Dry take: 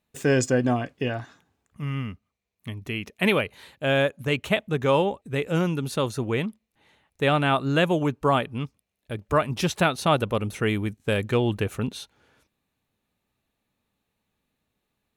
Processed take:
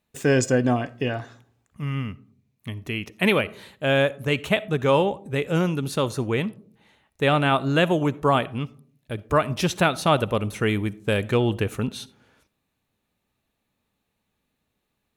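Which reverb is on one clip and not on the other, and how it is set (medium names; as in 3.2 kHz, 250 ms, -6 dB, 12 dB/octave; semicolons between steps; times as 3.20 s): algorithmic reverb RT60 0.54 s, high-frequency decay 0.3×, pre-delay 20 ms, DRR 19.5 dB; trim +1.5 dB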